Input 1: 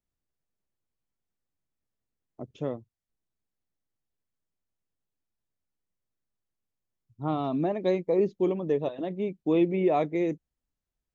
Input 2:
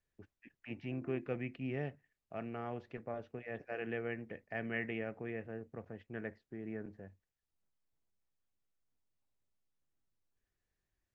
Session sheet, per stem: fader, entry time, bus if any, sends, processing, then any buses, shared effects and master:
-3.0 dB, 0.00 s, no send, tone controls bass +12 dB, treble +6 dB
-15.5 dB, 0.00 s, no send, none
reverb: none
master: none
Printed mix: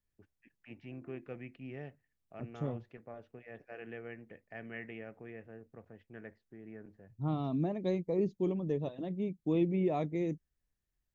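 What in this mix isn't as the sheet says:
stem 1 -3.0 dB -> -10.0 dB; stem 2 -15.5 dB -> -6.0 dB

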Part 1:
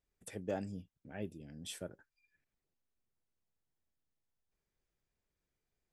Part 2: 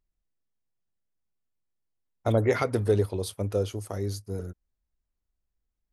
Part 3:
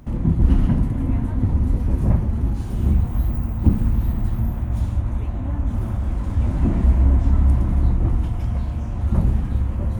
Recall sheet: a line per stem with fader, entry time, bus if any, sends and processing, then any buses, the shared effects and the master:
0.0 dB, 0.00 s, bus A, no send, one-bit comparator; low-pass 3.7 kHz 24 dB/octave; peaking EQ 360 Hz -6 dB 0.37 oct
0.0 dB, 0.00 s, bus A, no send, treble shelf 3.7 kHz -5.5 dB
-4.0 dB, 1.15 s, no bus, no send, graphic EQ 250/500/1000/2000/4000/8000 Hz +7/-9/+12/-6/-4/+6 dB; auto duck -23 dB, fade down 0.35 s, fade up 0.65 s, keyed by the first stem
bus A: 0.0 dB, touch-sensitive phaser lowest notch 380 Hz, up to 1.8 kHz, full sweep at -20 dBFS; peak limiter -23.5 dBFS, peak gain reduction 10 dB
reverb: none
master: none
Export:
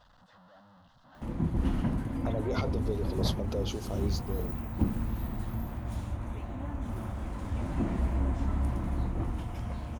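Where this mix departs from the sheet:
stem 2 0.0 dB -> +11.0 dB; stem 3: missing graphic EQ 250/500/1000/2000/4000/8000 Hz +7/-9/+12/-6/-4/+6 dB; master: extra bass shelf 200 Hz -11.5 dB

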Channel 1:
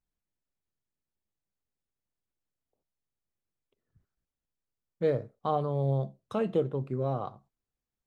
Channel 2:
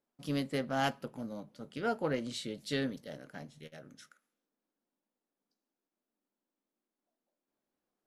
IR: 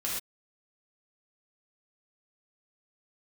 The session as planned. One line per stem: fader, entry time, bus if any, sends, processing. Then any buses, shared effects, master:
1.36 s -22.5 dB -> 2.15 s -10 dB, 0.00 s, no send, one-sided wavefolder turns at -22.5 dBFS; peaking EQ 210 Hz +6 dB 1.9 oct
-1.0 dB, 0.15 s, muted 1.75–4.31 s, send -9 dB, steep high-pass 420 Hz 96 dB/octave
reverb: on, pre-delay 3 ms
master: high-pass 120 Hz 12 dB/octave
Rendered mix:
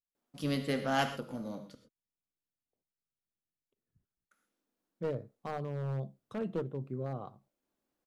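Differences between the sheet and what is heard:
stem 2: missing steep high-pass 420 Hz 96 dB/octave; master: missing high-pass 120 Hz 12 dB/octave

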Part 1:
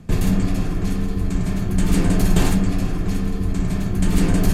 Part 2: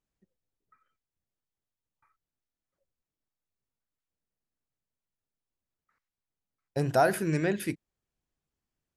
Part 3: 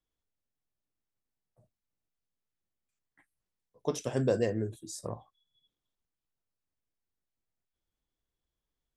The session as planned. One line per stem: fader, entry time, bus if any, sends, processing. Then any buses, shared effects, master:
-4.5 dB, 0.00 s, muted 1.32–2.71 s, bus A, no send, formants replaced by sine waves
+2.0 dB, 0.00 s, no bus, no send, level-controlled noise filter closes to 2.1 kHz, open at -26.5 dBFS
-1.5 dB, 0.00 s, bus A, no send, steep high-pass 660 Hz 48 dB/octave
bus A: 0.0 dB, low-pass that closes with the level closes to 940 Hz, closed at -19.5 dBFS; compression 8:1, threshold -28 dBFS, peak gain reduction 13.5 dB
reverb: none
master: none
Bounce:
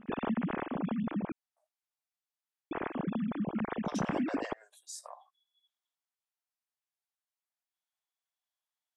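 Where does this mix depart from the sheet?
stem 1 -4.5 dB -> -14.5 dB; stem 2: muted

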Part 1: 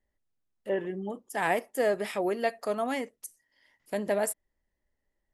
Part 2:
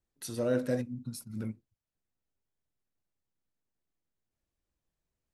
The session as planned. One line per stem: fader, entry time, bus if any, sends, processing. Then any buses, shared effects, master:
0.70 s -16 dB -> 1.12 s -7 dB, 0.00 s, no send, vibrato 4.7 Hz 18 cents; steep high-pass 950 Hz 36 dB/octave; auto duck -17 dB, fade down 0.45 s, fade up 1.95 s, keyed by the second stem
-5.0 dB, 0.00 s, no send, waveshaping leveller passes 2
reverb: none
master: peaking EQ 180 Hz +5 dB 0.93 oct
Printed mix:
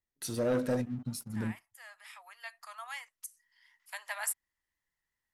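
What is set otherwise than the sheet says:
stem 1 -16.0 dB -> -8.5 dB; master: missing peaking EQ 180 Hz +5 dB 0.93 oct

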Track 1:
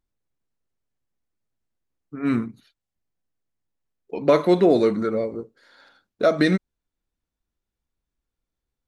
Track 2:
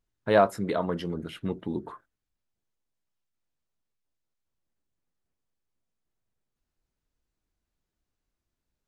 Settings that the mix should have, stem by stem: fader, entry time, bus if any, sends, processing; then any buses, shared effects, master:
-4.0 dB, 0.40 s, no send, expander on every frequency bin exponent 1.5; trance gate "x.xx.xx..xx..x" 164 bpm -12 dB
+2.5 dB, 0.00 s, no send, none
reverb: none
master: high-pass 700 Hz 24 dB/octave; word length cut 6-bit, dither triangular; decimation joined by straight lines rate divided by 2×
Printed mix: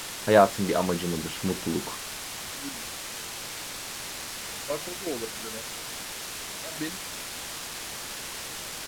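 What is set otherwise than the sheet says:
stem 1 -4.0 dB -> -13.0 dB; master: missing high-pass 700 Hz 24 dB/octave

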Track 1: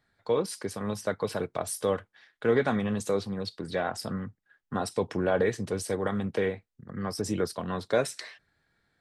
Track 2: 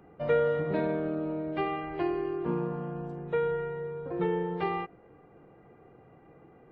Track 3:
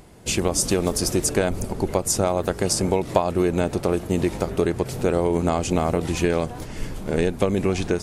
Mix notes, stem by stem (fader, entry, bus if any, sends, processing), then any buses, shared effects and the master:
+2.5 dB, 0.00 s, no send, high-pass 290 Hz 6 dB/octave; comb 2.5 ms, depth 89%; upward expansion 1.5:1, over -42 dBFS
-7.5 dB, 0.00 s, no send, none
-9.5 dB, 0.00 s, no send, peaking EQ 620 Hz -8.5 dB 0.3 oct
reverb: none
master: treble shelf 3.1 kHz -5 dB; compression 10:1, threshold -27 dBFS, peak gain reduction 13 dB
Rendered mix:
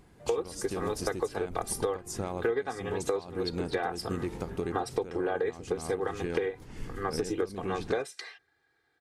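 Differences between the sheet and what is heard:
stem 1 +2.5 dB -> +12.0 dB; stem 2 -7.5 dB -> -18.5 dB

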